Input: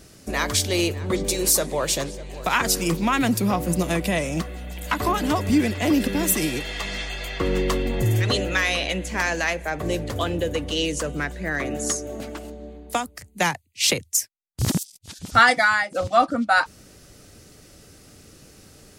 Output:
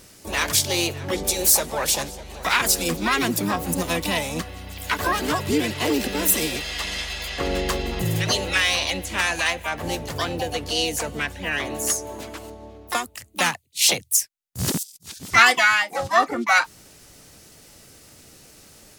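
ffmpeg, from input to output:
-filter_complex "[0:a]tiltshelf=f=850:g=-3.5,asplit=2[a][b];[b]asetrate=66075,aresample=44100,atempo=0.66742,volume=-3dB[c];[a][c]amix=inputs=2:normalize=0,volume=-2dB"

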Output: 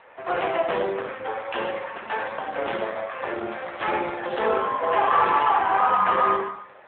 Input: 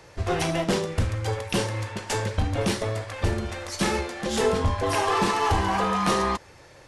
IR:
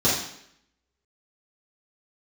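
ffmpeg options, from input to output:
-filter_complex "[0:a]highpass=690,lowpass=2k,asplit=2[a][b];[1:a]atrim=start_sample=2205,lowshelf=f=86:g=2,adelay=57[c];[b][c]afir=irnorm=-1:irlink=0,volume=-19.5dB[d];[a][d]amix=inputs=2:normalize=0,volume=7dB" -ar 8000 -c:a libopencore_amrnb -b:a 7400

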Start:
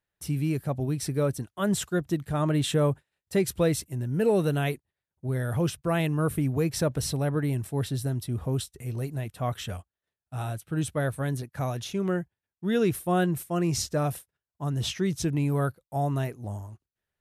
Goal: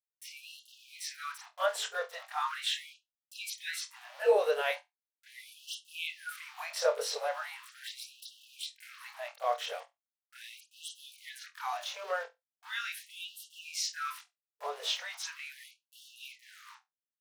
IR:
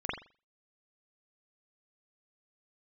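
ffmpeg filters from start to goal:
-filter_complex "[0:a]aeval=exprs='val(0)*gte(abs(val(0)),0.0106)':c=same[a];[1:a]atrim=start_sample=2205,asetrate=79380,aresample=44100[b];[a][b]afir=irnorm=-1:irlink=0,afftfilt=real='re*gte(b*sr/1024,410*pow(2700/410,0.5+0.5*sin(2*PI*0.39*pts/sr)))':imag='im*gte(b*sr/1024,410*pow(2700/410,0.5+0.5*sin(2*PI*0.39*pts/sr)))':win_size=1024:overlap=0.75"

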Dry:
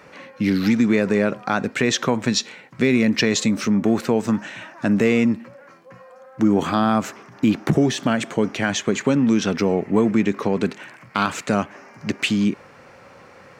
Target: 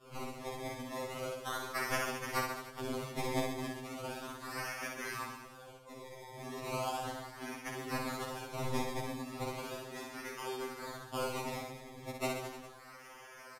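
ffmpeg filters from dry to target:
-filter_complex "[0:a]agate=range=-33dB:threshold=-40dB:ratio=3:detection=peak,asplit=3[a][b][c];[b]asetrate=35002,aresample=44100,atempo=1.25992,volume=-5dB[d];[c]asetrate=55563,aresample=44100,atempo=0.793701,volume=-17dB[e];[a][d][e]amix=inputs=3:normalize=0,highshelf=f=6.3k:g=8.5,acompressor=threshold=-34dB:ratio=3,asoftclip=type=hard:threshold=-26dB,highpass=f=1.2k:p=1,acrusher=samples=21:mix=1:aa=0.000001:lfo=1:lforange=21:lforate=0.36,asplit=2[f][g];[g]aecho=0:1:60|129|208.4|299.6|404.5:0.631|0.398|0.251|0.158|0.1[h];[f][h]amix=inputs=2:normalize=0,aresample=32000,aresample=44100,afftfilt=real='re*2.45*eq(mod(b,6),0)':imag='im*2.45*eq(mod(b,6),0)':win_size=2048:overlap=0.75,volume=2.5dB"

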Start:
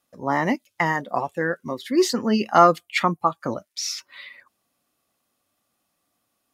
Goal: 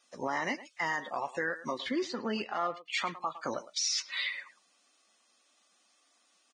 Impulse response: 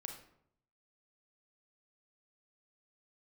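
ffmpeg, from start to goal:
-filter_complex "[0:a]highpass=f=440:p=1,acompressor=threshold=-33dB:ratio=5,highshelf=f=2.6k:g=11.5,asplit=2[a][b];[b]adelay=110,highpass=300,lowpass=3.4k,asoftclip=type=hard:threshold=-24.5dB,volume=-15dB[c];[a][c]amix=inputs=2:normalize=0,alimiter=limit=-24dB:level=0:latency=1:release=12,asettb=1/sr,asplit=3[d][e][f];[d]atrim=end=1.784[g];[e]atrim=start=1.78:end=2.87,asetpts=PTS-STARTPTS,afade=t=in:d=0.004:c=qsin,afade=t=out:st=1.086:d=0.004:c=qsin,adynamicsmooth=sensitivity=2.5:basefreq=2.1k[h];[f]atrim=start=2.866[i];[g][h]acrossfade=d=0.004:c1=hsin:c2=qsin[j];[j][i]acrossfade=d=0.004:c1=qsin:c2=hsin,lowpass=5.9k,volume=2dB" -ar 22050 -c:a libvorbis -b:a 16k

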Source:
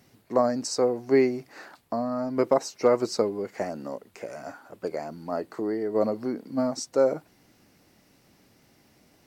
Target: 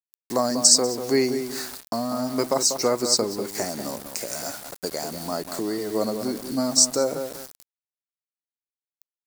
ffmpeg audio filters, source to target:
-filter_complex "[0:a]asplit=2[a][b];[b]acompressor=threshold=-34dB:ratio=12,volume=0dB[c];[a][c]amix=inputs=2:normalize=0,equalizer=f=500:t=o:w=1:g=-4,equalizer=f=4k:t=o:w=1:g=4,equalizer=f=8k:t=o:w=1:g=11,asplit=2[d][e];[e]adelay=192,lowpass=f=1.6k:p=1,volume=-7.5dB,asplit=2[f][g];[g]adelay=192,lowpass=f=1.6k:p=1,volume=0.3,asplit=2[h][i];[i]adelay=192,lowpass=f=1.6k:p=1,volume=0.3,asplit=2[j][k];[k]adelay=192,lowpass=f=1.6k:p=1,volume=0.3[l];[d][f][h][j][l]amix=inputs=5:normalize=0,aeval=exprs='val(0)*gte(abs(val(0)),0.0119)':c=same,aexciter=amount=3.5:drive=2.3:freq=4k,adynamicequalizer=threshold=0.02:dfrequency=1900:dqfactor=0.7:tfrequency=1900:tqfactor=0.7:attack=5:release=100:ratio=0.375:range=2.5:mode=cutabove:tftype=highshelf"

